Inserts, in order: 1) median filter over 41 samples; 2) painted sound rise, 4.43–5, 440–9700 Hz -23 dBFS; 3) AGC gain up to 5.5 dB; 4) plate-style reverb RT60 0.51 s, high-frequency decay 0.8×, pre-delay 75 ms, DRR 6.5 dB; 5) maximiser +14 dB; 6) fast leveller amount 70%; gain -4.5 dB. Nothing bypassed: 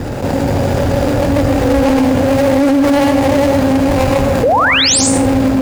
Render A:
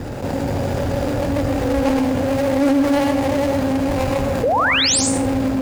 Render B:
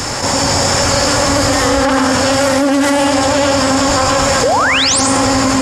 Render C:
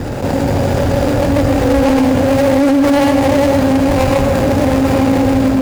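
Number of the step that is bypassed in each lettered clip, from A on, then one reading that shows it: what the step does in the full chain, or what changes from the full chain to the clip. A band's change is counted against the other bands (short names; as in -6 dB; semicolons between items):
5, momentary loudness spread change +2 LU; 1, 125 Hz band -7.0 dB; 2, 8 kHz band -11.0 dB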